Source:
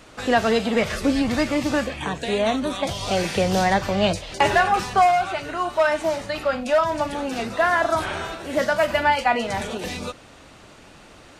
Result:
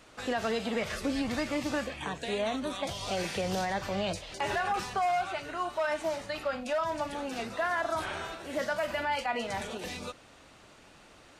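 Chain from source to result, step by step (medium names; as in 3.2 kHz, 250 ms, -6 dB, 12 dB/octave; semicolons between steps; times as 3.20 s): bass shelf 390 Hz -3.5 dB; peak limiter -14.5 dBFS, peak gain reduction 7 dB; trim -7.5 dB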